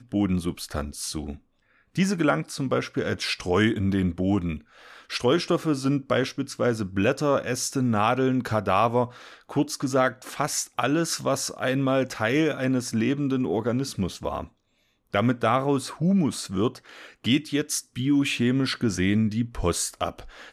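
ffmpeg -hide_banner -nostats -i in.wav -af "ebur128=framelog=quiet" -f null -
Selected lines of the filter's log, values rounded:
Integrated loudness:
  I:         -25.3 LUFS
  Threshold: -35.6 LUFS
Loudness range:
  LRA:         2.0 LU
  Threshold: -45.5 LUFS
  LRA low:   -26.5 LUFS
  LRA high:  -24.5 LUFS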